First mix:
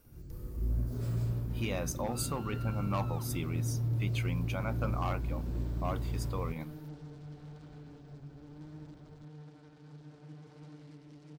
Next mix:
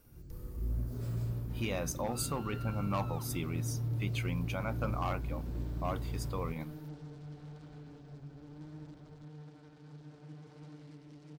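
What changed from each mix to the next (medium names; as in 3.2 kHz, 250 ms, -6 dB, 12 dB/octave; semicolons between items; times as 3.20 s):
first sound -3.0 dB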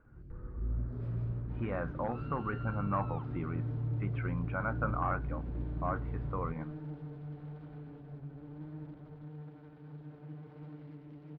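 speech: add resonant low-pass 1.5 kHz, resonance Q 3.6; second sound +3.5 dB; master: add distance through air 480 m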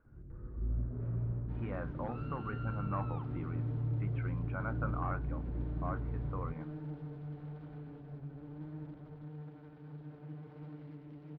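speech -5.5 dB; first sound: add low-pass 1.7 kHz 12 dB/octave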